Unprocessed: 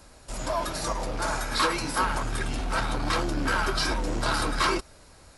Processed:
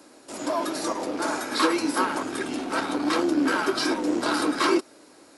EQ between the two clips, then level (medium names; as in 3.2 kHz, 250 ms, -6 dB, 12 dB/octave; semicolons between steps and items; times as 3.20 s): resonant high-pass 300 Hz, resonance Q 3.6; 0.0 dB